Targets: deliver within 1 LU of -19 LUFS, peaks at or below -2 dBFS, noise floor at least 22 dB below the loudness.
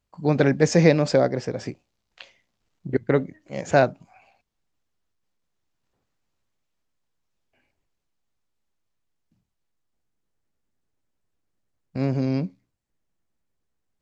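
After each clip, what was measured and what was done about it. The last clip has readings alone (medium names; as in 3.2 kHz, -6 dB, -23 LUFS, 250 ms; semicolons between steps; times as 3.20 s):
loudness -22.0 LUFS; peak level -2.0 dBFS; loudness target -19.0 LUFS
-> trim +3 dB; peak limiter -2 dBFS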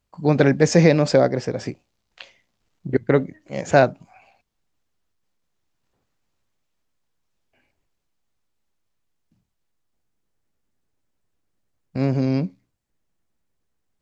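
loudness -19.5 LUFS; peak level -2.0 dBFS; noise floor -75 dBFS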